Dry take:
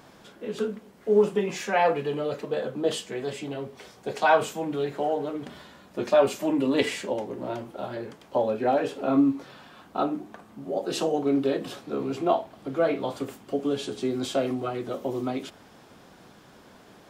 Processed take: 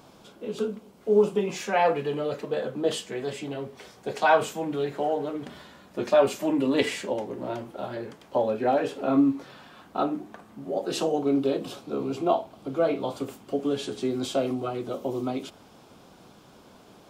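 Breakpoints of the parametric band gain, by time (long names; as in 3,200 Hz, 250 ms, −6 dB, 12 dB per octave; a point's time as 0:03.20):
parametric band 1,800 Hz 0.42 octaves
0:01.24 −10.5 dB
0:01.96 0 dB
0:10.88 0 dB
0:11.47 −9.5 dB
0:13.06 −9.5 dB
0:13.88 +1 dB
0:14.41 −8.5 dB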